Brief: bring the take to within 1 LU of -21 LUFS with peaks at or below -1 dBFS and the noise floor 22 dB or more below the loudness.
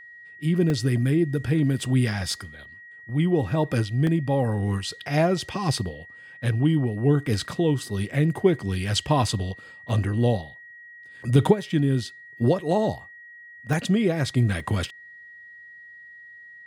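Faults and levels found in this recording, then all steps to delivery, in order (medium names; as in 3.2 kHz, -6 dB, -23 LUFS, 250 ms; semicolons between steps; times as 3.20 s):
dropouts 6; longest dropout 1.5 ms; steady tone 1.9 kHz; tone level -43 dBFS; loudness -24.0 LUFS; peak level -4.5 dBFS; loudness target -21.0 LUFS
-> interpolate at 0.70/4.07/7.27/9.89/13.73/14.60 s, 1.5 ms; band-stop 1.9 kHz, Q 30; trim +3 dB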